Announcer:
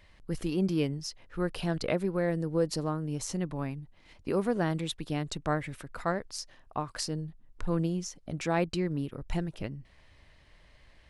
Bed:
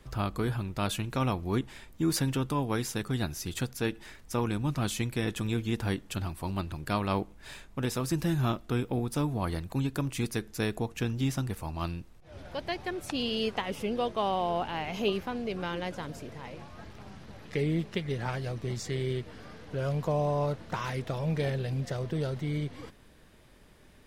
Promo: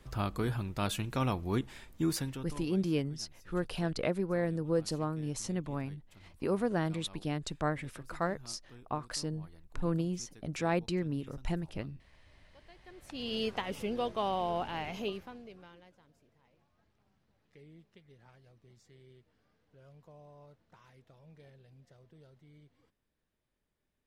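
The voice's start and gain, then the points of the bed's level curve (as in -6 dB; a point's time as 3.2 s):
2.15 s, -2.5 dB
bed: 2.05 s -2.5 dB
2.85 s -25 dB
12.74 s -25 dB
13.35 s -3.5 dB
14.86 s -3.5 dB
15.98 s -27 dB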